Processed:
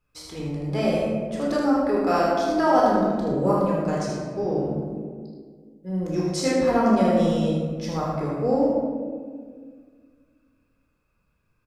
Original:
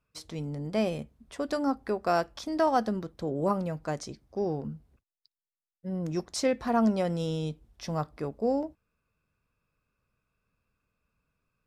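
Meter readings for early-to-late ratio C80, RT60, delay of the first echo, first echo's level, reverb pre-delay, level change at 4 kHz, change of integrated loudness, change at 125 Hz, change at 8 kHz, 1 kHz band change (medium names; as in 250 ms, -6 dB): 1.5 dB, 1.8 s, 77 ms, -5.0 dB, 15 ms, +5.0 dB, +7.5 dB, +6.5 dB, +5.0 dB, +7.5 dB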